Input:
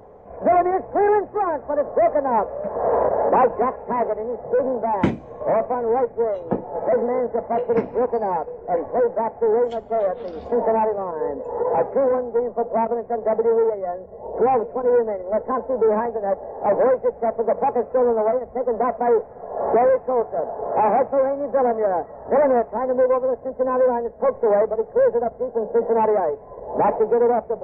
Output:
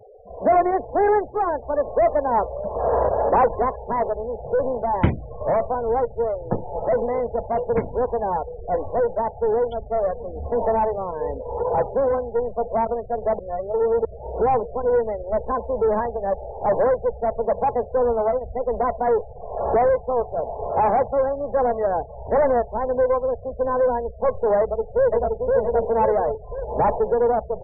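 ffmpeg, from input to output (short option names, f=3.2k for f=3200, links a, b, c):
-filter_complex "[0:a]asettb=1/sr,asplit=3[a][b][c];[a]atrim=end=12.024[d];[b]atrim=start=12.02:end=12.52,asetpts=PTS-STARTPTS,afade=t=in:d=0.004:c=qsin,afade=t=out:st=0.496:d=0.004:c=qsin,highshelf=f=2.3k:g=3[e];[c]atrim=start=12.516[f];[d][e]acrossfade=d=0.004:c1=hsin:c2=qsin[g];[g][f]acrossfade=d=0.004:c1=qsin:c2=hsin,asplit=2[h][i];[i]afade=t=in:st=24.6:d=0.01,afade=t=out:st=25.28:d=0.01,aecho=0:1:520|1040|1560|2080|2600|3120|3640:0.841395|0.420698|0.210349|0.105174|0.0525872|0.0262936|0.0131468[j];[h][j]amix=inputs=2:normalize=0,asplit=3[k][l][m];[k]atrim=end=13.392[n];[l]atrim=start=13.388:end=14.052,asetpts=PTS-STARTPTS,areverse[o];[m]atrim=start=14.048[p];[n][o]acrossfade=d=0.004:c1=hsin:c2=hsin[q];[q][p]acrossfade=d=0.004:c1=hsin:c2=hsin,asubboost=boost=8.5:cutoff=84,afftfilt=real='re*gte(hypot(re,im),0.02)':imag='im*gte(hypot(re,im),0.02)':win_size=1024:overlap=0.75"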